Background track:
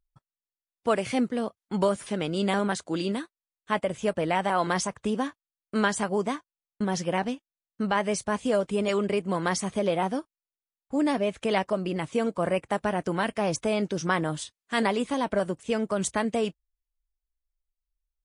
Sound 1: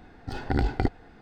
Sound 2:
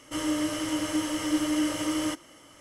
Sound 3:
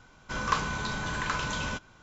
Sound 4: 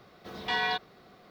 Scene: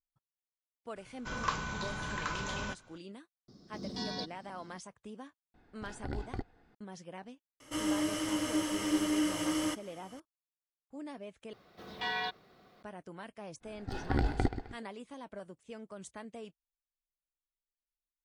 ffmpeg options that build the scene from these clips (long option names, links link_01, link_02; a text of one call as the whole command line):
ffmpeg -i bed.wav -i cue0.wav -i cue1.wav -i cue2.wav -i cue3.wav -filter_complex "[4:a]asplit=2[link_01][link_02];[1:a]asplit=2[link_03][link_04];[0:a]volume=-19.5dB[link_05];[link_01]firequalizer=gain_entry='entry(100,0);entry(240,8);entry(470,-8);entry(710,-13);entry(2500,-23);entry(5100,8);entry(7400,-4);entry(12000,-17)':delay=0.05:min_phase=1[link_06];[link_04]aecho=1:1:130|260|390|520:0.282|0.0986|0.0345|0.0121[link_07];[link_05]asplit=2[link_08][link_09];[link_08]atrim=end=11.534[link_10];[link_02]atrim=end=1.3,asetpts=PTS-STARTPTS,volume=-6dB[link_11];[link_09]atrim=start=12.826[link_12];[3:a]atrim=end=2.02,asetpts=PTS-STARTPTS,volume=-6dB,afade=type=in:duration=0.004:curve=hsin,afade=type=out:start_time=2.016:duration=0.004:curve=hsin,adelay=960[link_13];[link_06]atrim=end=1.3,asetpts=PTS-STARTPTS,volume=-0.5dB,afade=type=in:duration=0.004:curve=hsin,afade=type=out:start_time=1.296:duration=0.004:curve=hsin,adelay=3480[link_14];[link_03]atrim=end=1.21,asetpts=PTS-STARTPTS,volume=-14dB,afade=type=in:duration=0.004:curve=hsin,afade=type=out:start_time=1.206:duration=0.004:curve=hsin,adelay=5540[link_15];[2:a]atrim=end=2.6,asetpts=PTS-STARTPTS,volume=-4dB,afade=type=in:duration=0.004:curve=hsin,afade=type=out:start_time=2.596:duration=0.004:curve=hsin,adelay=7600[link_16];[link_07]atrim=end=1.21,asetpts=PTS-STARTPTS,volume=-5dB,afade=type=in:duration=0.1,afade=type=out:start_time=1.11:duration=0.1,adelay=13600[link_17];[link_10][link_11]acrossfade=duration=0.004:curve1=hsin:curve2=hsin[link_18];[link_18][link_12]acrossfade=duration=0.004:curve1=hsin:curve2=hsin[link_19];[link_19][link_13][link_14][link_15][link_16][link_17]amix=inputs=6:normalize=0" out.wav